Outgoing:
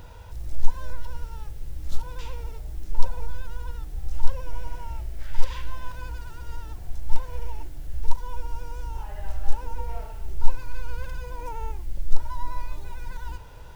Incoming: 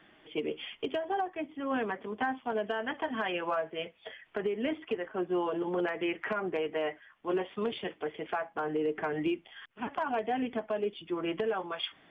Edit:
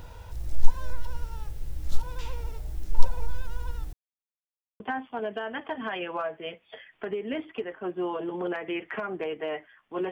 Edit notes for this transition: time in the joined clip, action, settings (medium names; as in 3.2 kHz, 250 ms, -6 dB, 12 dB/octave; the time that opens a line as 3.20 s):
outgoing
3.93–4.80 s: mute
4.80 s: go over to incoming from 2.13 s